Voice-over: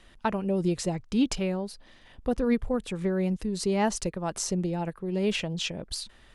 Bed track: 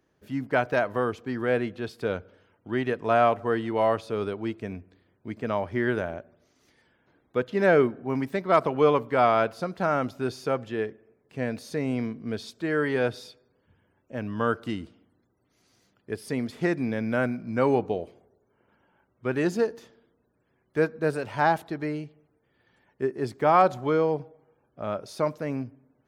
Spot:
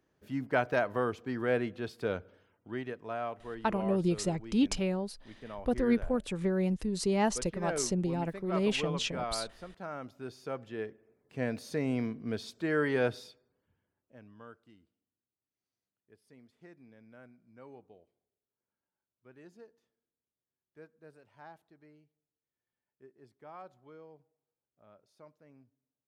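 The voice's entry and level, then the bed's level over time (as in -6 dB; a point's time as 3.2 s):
3.40 s, -2.5 dB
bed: 2.36 s -4.5 dB
3.17 s -16 dB
9.94 s -16 dB
11.44 s -3.5 dB
13.12 s -3.5 dB
14.69 s -29 dB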